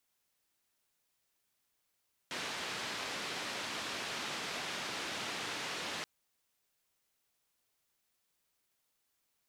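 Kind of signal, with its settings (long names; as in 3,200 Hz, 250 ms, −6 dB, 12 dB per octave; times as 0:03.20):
band-limited noise 150–3,900 Hz, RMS −40 dBFS 3.73 s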